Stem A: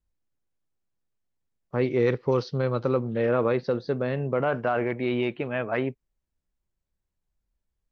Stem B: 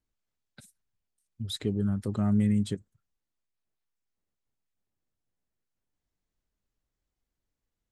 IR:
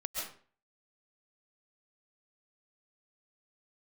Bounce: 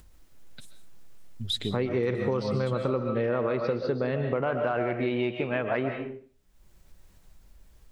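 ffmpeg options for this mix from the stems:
-filter_complex "[0:a]acompressor=mode=upward:threshold=-43dB:ratio=2.5,volume=1dB,asplit=3[a][b][c];[b]volume=-3dB[d];[1:a]equalizer=f=3.3k:w=1.3:g=11,volume=-2.5dB,asplit=2[e][f];[f]volume=-10dB[g];[c]apad=whole_len=349218[h];[e][h]sidechaincompress=threshold=-30dB:ratio=8:attack=16:release=176[i];[2:a]atrim=start_sample=2205[j];[d][g]amix=inputs=2:normalize=0[k];[k][j]afir=irnorm=-1:irlink=0[l];[a][i][l]amix=inputs=3:normalize=0,acompressor=threshold=-25dB:ratio=4"

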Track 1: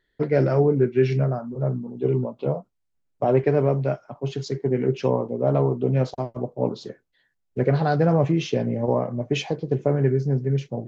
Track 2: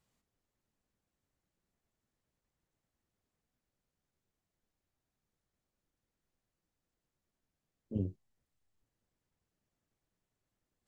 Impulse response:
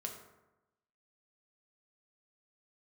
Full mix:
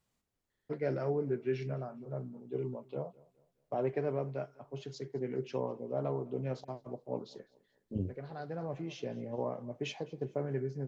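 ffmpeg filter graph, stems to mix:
-filter_complex "[0:a]lowshelf=f=160:g=-7.5,adelay=500,volume=-12.5dB,asplit=2[a][b];[b]volume=-23.5dB[c];[1:a]volume=-0.5dB,asplit=2[d][e];[e]apad=whole_len=501803[f];[a][f]sidechaincompress=threshold=-44dB:ratio=3:attack=30:release=1240[g];[c]aecho=0:1:208|416|624|832|1040:1|0.36|0.13|0.0467|0.0168[h];[g][d][h]amix=inputs=3:normalize=0"

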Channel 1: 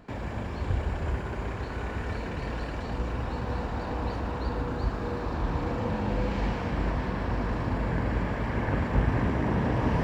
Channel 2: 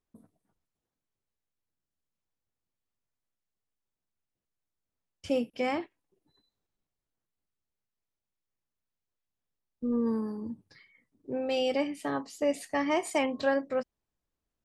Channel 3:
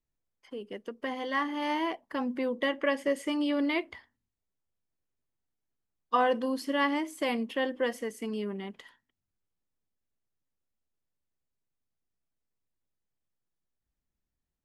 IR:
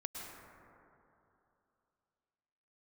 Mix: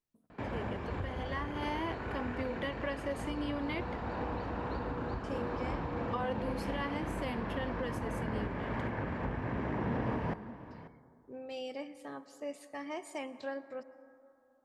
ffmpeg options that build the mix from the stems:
-filter_complex "[0:a]bass=f=250:g=0,treble=f=4k:g=-11,adelay=300,volume=-1.5dB,asplit=3[a][b][c];[b]volume=-17.5dB[d];[c]volume=-21.5dB[e];[1:a]volume=-14dB,asplit=2[f][g];[g]volume=-10dB[h];[2:a]volume=-2.5dB[i];[a][i]amix=inputs=2:normalize=0,alimiter=level_in=1dB:limit=-24dB:level=0:latency=1:release=482,volume=-1dB,volume=0dB[j];[3:a]atrim=start_sample=2205[k];[d][h]amix=inputs=2:normalize=0[l];[l][k]afir=irnorm=-1:irlink=0[m];[e]aecho=0:1:539:1[n];[f][j][m][n]amix=inputs=4:normalize=0,lowshelf=f=80:g=-10.5"

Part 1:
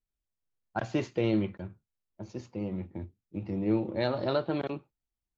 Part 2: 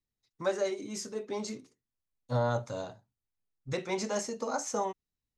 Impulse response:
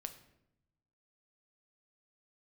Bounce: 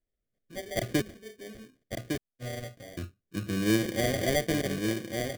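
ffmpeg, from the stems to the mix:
-filter_complex "[0:a]volume=2.5dB,asplit=3[a][b][c];[a]atrim=end=1.02,asetpts=PTS-STARTPTS,afade=t=out:st=1.016:d=0.004:c=hsin[d];[b]atrim=start=1.02:end=2.97,asetpts=PTS-STARTPTS,volume=0[e];[c]atrim=start=2.97,asetpts=PTS-STARTPTS,afade=t=in:d=0.004:c=hsin[f];[d][e][f]concat=n=3:v=0:a=1,asplit=2[g][h];[h]volume=-5dB[i];[1:a]adelay=100,volume=-8dB[j];[i]aecho=0:1:1157:1[k];[g][j][k]amix=inputs=3:normalize=0,acrusher=samples=33:mix=1:aa=0.000001,asuperstop=centerf=910:order=4:qfactor=1.8"

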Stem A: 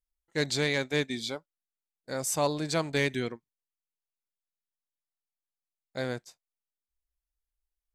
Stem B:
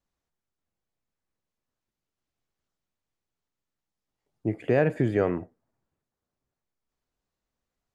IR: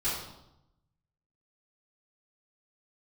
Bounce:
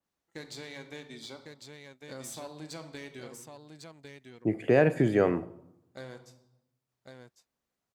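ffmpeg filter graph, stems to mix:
-filter_complex "[0:a]acompressor=threshold=-33dB:ratio=5,aeval=exprs='0.0794*(cos(1*acos(clip(val(0)/0.0794,-1,1)))-cos(1*PI/2))+0.00501*(cos(6*acos(clip(val(0)/0.0794,-1,1)))-cos(6*PI/2))':c=same,volume=-8.5dB,asplit=3[a][b][c];[b]volume=-13.5dB[d];[c]volume=-4.5dB[e];[1:a]highpass=110,adynamicequalizer=threshold=0.00708:dfrequency=3400:dqfactor=0.7:tfrequency=3400:tqfactor=0.7:attack=5:release=100:ratio=0.375:range=3:mode=boostabove:tftype=highshelf,volume=0dB,asplit=2[f][g];[g]volume=-22.5dB[h];[2:a]atrim=start_sample=2205[i];[d][h]amix=inputs=2:normalize=0[j];[j][i]afir=irnorm=-1:irlink=0[k];[e]aecho=0:1:1102:1[l];[a][f][k][l]amix=inputs=4:normalize=0,highpass=55"

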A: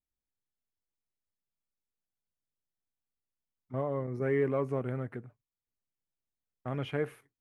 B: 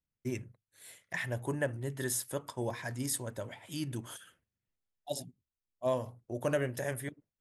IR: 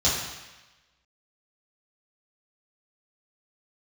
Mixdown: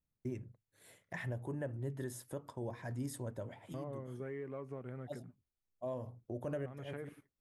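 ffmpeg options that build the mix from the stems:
-filter_complex "[0:a]acompressor=threshold=-32dB:ratio=10,volume=-7.5dB,asplit=2[a][b];[1:a]tiltshelf=f=1.3k:g=7,volume=-4dB[c];[b]apad=whole_len=326453[d];[c][d]sidechaincompress=threshold=-57dB:ratio=8:attack=29:release=150[e];[a][e]amix=inputs=2:normalize=0,alimiter=level_in=7dB:limit=-24dB:level=0:latency=1:release=349,volume=-7dB"

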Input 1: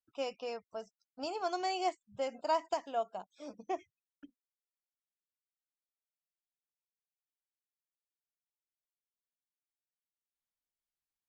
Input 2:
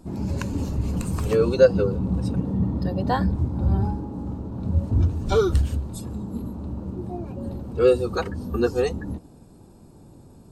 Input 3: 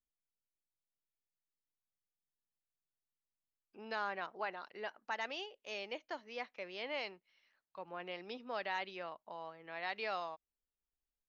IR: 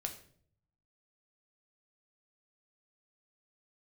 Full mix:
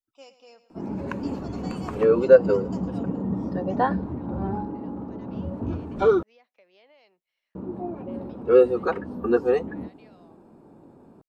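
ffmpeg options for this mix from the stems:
-filter_complex "[0:a]highshelf=f=3.6k:g=8.5,volume=-12dB,asplit=2[a][b];[b]volume=-14dB[c];[1:a]acrossover=split=190 2400:gain=0.126 1 0.0891[d][e][f];[d][e][f]amix=inputs=3:normalize=0,adelay=700,volume=2dB,asplit=3[g][h][i];[g]atrim=end=6.23,asetpts=PTS-STARTPTS,afade=t=out:st=6.226:d=0.004:c=hsin[j];[h]atrim=start=6.23:end=7.55,asetpts=PTS-STARTPTS,volume=0[k];[i]atrim=start=7.55,asetpts=PTS-STARTPTS,afade=t=in:d=0.004:c=hsin[l];[j][k][l]concat=n=3:v=0:a=1[m];[2:a]acrossover=split=420|3000[n][o][p];[o]acompressor=threshold=-42dB:ratio=6[q];[n][q][p]amix=inputs=3:normalize=0,equalizer=f=640:t=o:w=1.1:g=6,acompressor=threshold=-48dB:ratio=3,volume=-9.5dB[r];[c]aecho=0:1:108|216|324|432|540|648|756|864:1|0.52|0.27|0.141|0.0731|0.038|0.0198|0.0103[s];[a][m][r][s]amix=inputs=4:normalize=0"

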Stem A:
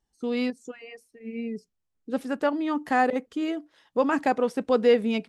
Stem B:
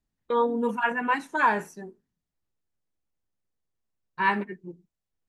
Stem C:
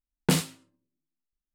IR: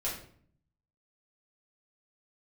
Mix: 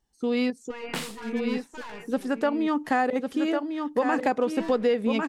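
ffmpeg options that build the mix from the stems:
-filter_complex "[0:a]volume=3dB,asplit=2[a][b];[b]volume=-6.5dB[c];[1:a]alimiter=limit=-21dB:level=0:latency=1:release=36,aeval=exprs='(tanh(56.2*val(0)+0.8)-tanh(0.8))/56.2':c=same,adelay=400,volume=-4dB,asplit=2[d][e];[e]volume=-20dB[f];[2:a]highpass=f=1k:p=1,acrossover=split=3300[g][h];[h]acompressor=threshold=-36dB:ratio=4:attack=1:release=60[i];[g][i]amix=inputs=2:normalize=0,adelay=650,volume=-0.5dB[j];[c][f]amix=inputs=2:normalize=0,aecho=0:1:1099:1[k];[a][d][j][k]amix=inputs=4:normalize=0,acompressor=threshold=-20dB:ratio=5"

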